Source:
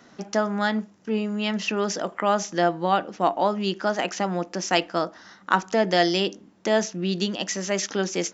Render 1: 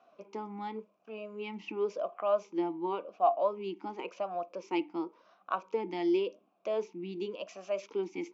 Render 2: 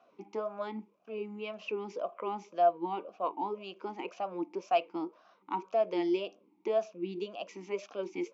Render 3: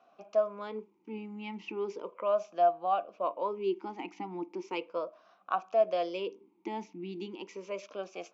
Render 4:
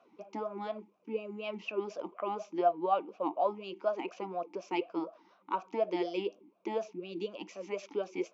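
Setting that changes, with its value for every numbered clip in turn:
vowel sweep, rate: 0.92, 1.9, 0.36, 4.1 Hz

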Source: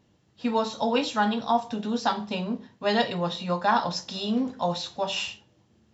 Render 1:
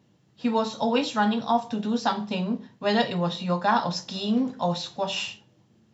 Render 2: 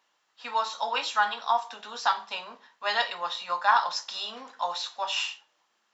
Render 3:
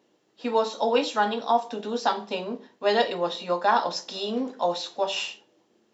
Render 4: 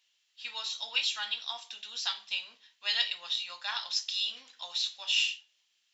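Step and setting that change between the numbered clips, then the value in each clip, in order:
resonant high-pass, frequency: 130, 1100, 370, 2900 Hz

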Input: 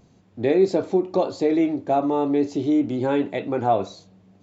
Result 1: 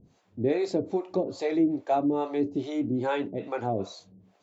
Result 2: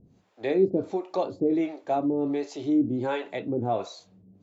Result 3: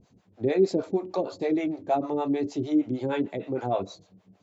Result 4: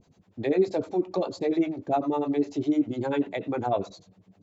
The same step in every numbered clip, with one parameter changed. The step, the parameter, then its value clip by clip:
harmonic tremolo, rate: 2.4, 1.4, 6.5, 10 Hz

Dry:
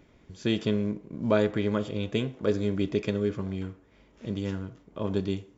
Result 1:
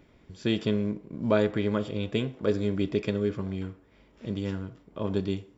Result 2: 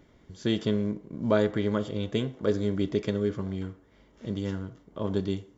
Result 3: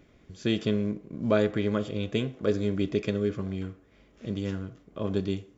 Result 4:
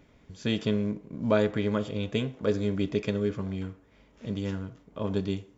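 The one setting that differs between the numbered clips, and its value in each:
notch, frequency: 6400, 2500, 920, 350 Hz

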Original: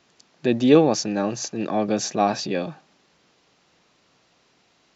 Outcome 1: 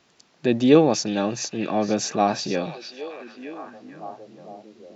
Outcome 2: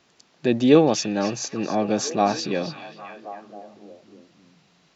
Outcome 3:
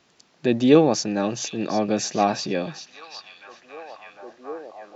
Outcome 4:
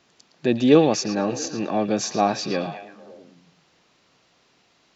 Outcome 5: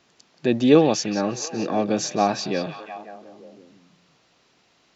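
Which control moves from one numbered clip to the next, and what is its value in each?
delay with a stepping band-pass, time: 0.458, 0.269, 0.754, 0.112, 0.177 s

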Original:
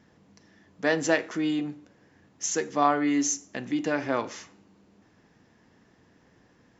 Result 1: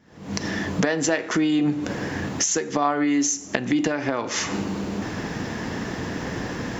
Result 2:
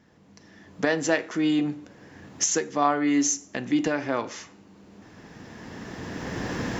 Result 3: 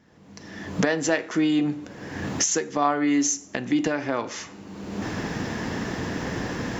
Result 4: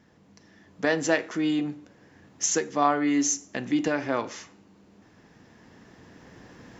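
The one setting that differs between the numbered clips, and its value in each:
recorder AGC, rising by: 88, 13, 35, 5.1 dB/s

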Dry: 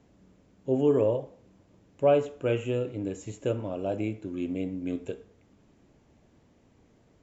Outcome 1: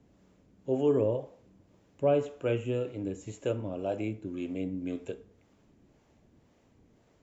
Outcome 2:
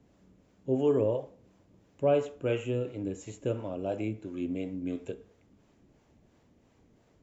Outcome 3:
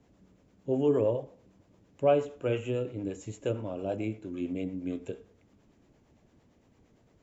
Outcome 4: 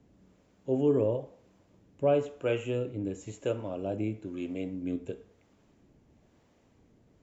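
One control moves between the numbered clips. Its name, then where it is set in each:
harmonic tremolo, rate: 1.9, 2.9, 8.8, 1 Hz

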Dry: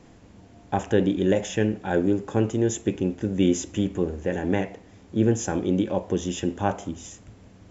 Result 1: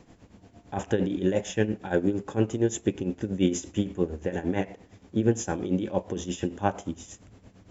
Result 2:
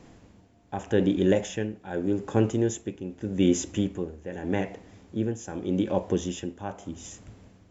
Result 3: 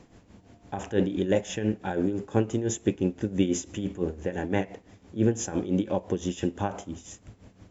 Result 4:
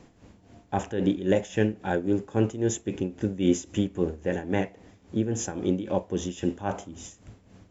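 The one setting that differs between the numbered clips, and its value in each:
tremolo, rate: 8.7, 0.83, 5.9, 3.7 Hz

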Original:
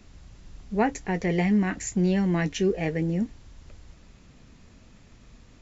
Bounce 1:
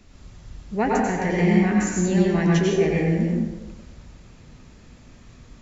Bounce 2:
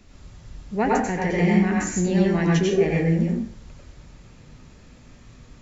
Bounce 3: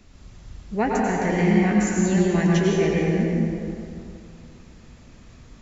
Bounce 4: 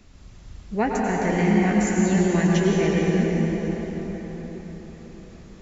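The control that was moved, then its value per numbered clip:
plate-style reverb, RT60: 1.1, 0.53, 2.5, 5.2 s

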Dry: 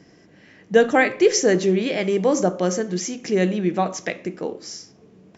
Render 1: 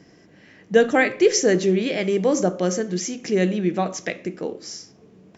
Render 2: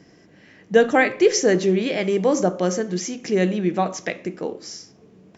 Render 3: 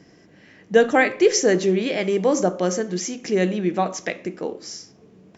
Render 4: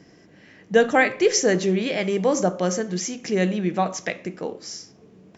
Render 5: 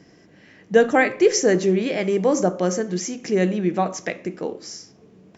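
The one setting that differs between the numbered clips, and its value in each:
dynamic EQ, frequency: 930, 9000, 130, 340, 3500 Hz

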